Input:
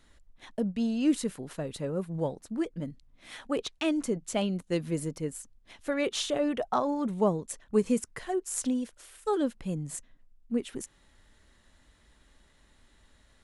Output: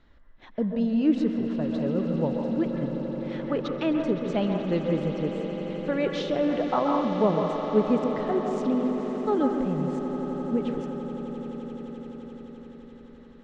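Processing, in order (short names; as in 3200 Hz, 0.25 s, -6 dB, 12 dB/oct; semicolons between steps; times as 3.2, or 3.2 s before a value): LPF 5200 Hz 24 dB/oct; high shelf 2700 Hz -11.5 dB; swelling echo 86 ms, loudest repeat 8, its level -15 dB; on a send at -3.5 dB: reverb RT60 0.60 s, pre-delay 0.125 s; on the sum: gain +3 dB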